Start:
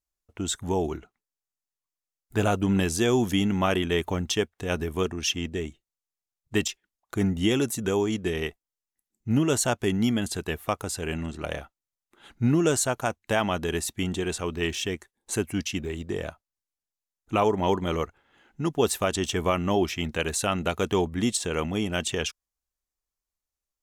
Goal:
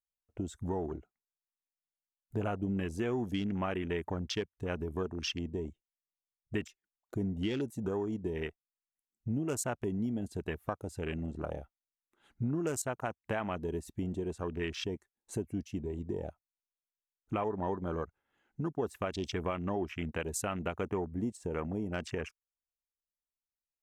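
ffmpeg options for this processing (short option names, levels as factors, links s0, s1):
-af "afwtdn=0.0224,asetnsamples=n=441:p=0,asendcmd='20.83 equalizer g -13.5',equalizer=f=3500:t=o:w=0.6:g=-3,acompressor=threshold=0.0126:ratio=2.5,volume=1.19"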